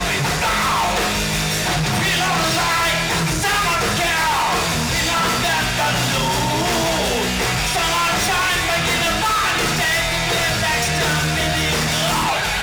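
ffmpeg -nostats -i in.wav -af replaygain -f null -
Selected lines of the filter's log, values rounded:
track_gain = +0.8 dB
track_peak = 0.107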